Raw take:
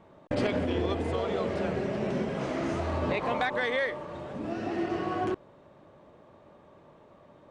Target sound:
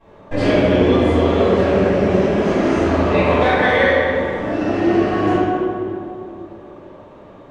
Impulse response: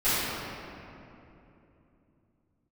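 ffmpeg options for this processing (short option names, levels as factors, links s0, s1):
-filter_complex "[0:a]equalizer=f=140:w=2.8:g=-4.5[s0];[1:a]atrim=start_sample=2205,asetrate=57330,aresample=44100[s1];[s0][s1]afir=irnorm=-1:irlink=0"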